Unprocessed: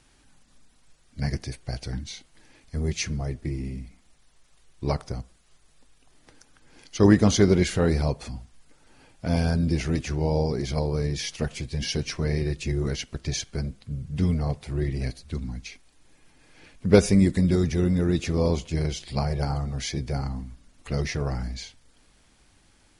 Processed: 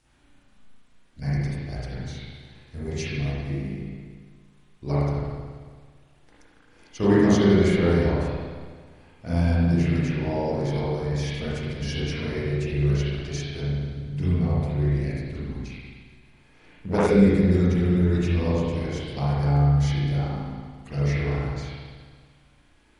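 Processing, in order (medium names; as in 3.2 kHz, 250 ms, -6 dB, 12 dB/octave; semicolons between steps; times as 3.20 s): spring tank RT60 1.7 s, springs 35/56 ms, chirp 45 ms, DRR -9.5 dB; 15.66–17.11 s: transformer saturation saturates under 810 Hz; trim -8.5 dB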